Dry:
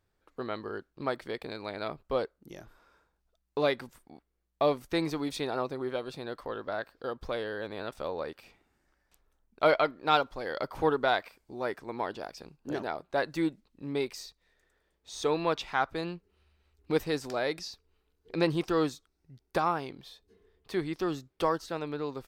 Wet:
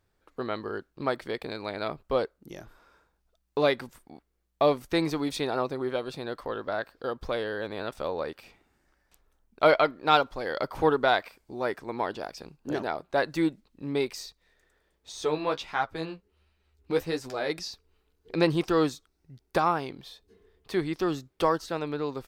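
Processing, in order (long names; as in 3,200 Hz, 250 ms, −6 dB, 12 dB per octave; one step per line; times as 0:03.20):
0:15.12–0:17.50: flanger 1.4 Hz, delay 8.3 ms, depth 7.7 ms, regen +23%
level +3.5 dB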